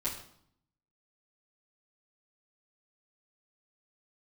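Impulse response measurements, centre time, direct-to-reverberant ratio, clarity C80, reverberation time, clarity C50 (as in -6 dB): 28 ms, -9.5 dB, 10.5 dB, 0.65 s, 7.0 dB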